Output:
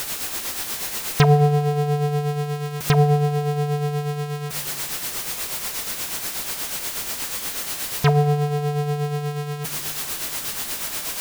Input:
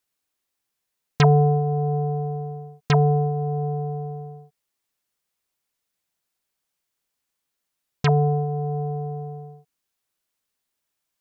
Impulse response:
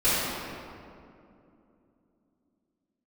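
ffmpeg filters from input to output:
-filter_complex "[0:a]aeval=exprs='val(0)+0.5*0.0794*sgn(val(0))':channel_layout=same,tremolo=f=8.3:d=0.49,asplit=2[link_01][link_02];[1:a]atrim=start_sample=2205[link_03];[link_02][link_03]afir=irnorm=-1:irlink=0,volume=-31.5dB[link_04];[link_01][link_04]amix=inputs=2:normalize=0,volume=2dB"

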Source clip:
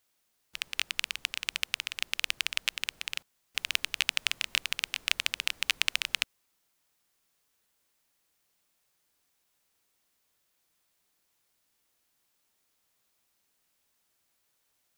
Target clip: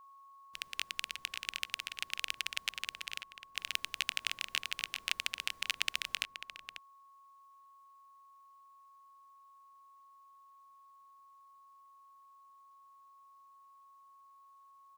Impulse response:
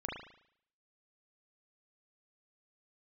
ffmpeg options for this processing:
-filter_complex "[0:a]aeval=exprs='val(0)+0.00398*sin(2*PI*1100*n/s)':channel_layout=same,asplit=2[link_01][link_02];[link_02]adelay=542.3,volume=-8dB,highshelf=frequency=4000:gain=-12.2[link_03];[link_01][link_03]amix=inputs=2:normalize=0,volume=-6.5dB"

